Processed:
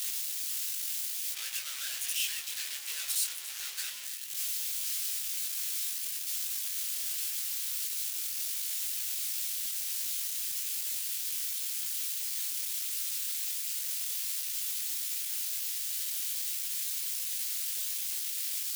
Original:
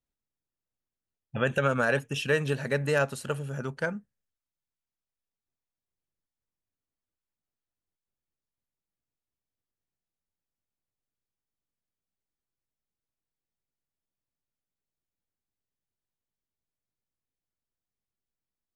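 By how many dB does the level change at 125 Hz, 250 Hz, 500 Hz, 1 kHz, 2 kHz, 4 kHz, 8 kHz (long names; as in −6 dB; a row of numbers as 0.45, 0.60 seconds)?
below −40 dB, below −40 dB, below −35 dB, below −15 dB, −9.0 dB, +10.5 dB, +21.0 dB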